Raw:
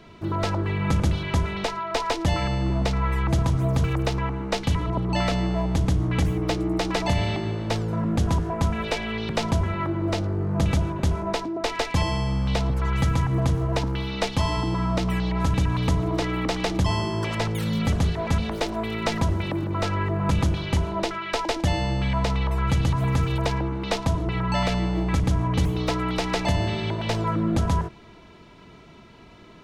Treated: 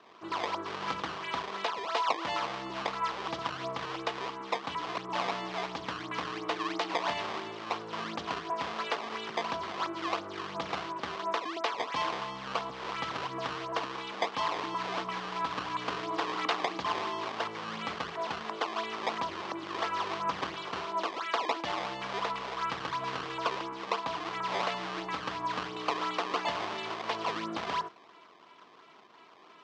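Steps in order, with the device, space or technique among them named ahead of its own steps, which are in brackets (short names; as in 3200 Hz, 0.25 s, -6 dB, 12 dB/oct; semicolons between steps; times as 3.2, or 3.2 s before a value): 16.11–16.65 high shelf 3400 Hz +10.5 dB; circuit-bent sampling toy (decimation with a swept rate 18×, swing 160% 2.9 Hz; speaker cabinet 480–5200 Hz, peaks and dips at 560 Hz -4 dB, 1100 Hz +8 dB, 3100 Hz +3 dB); gain -4.5 dB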